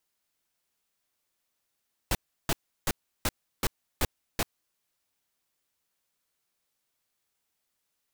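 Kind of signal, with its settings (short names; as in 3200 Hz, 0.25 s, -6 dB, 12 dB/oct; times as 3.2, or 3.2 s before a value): noise bursts pink, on 0.04 s, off 0.34 s, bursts 7, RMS -25.5 dBFS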